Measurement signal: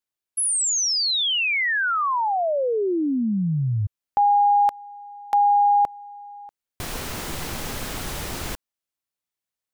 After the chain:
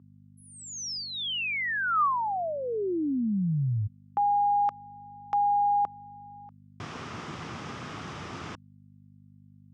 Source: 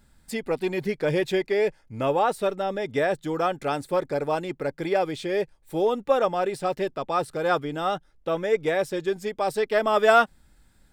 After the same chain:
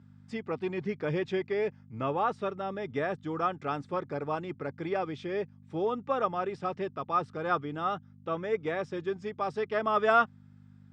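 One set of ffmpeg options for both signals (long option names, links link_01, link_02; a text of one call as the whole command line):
ffmpeg -i in.wav -af "lowshelf=frequency=280:gain=5.5,aeval=exprs='val(0)+0.0112*(sin(2*PI*50*n/s)+sin(2*PI*2*50*n/s)/2+sin(2*PI*3*50*n/s)/3+sin(2*PI*4*50*n/s)/4+sin(2*PI*5*50*n/s)/5)':channel_layout=same,highpass=frequency=100:width=0.5412,highpass=frequency=100:width=1.3066,equalizer=frequency=550:width_type=q:width=4:gain=-4,equalizer=frequency=1200:width_type=q:width=4:gain=8,equalizer=frequency=4200:width_type=q:width=4:gain=-8,lowpass=frequency=5500:width=0.5412,lowpass=frequency=5500:width=1.3066,volume=-8dB" out.wav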